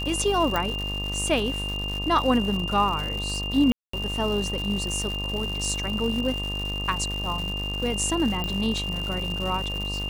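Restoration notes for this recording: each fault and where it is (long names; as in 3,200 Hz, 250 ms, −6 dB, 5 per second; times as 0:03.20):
mains buzz 50 Hz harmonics 25 −32 dBFS
surface crackle 250 per second −30 dBFS
whistle 2,800 Hz −30 dBFS
0:00.56: click
0:03.72–0:03.93: drop-out 214 ms
0:08.44: click −15 dBFS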